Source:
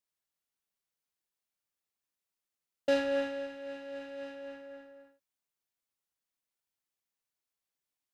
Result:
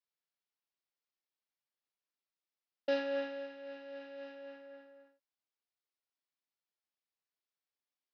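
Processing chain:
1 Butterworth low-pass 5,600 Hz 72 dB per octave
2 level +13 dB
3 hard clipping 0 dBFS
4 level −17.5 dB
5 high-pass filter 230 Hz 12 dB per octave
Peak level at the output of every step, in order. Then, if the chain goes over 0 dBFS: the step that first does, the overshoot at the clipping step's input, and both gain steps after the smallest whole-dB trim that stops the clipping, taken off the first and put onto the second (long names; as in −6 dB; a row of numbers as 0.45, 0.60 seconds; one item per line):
−18.0, −5.0, −5.0, −22.5, −22.0 dBFS
no step passes full scale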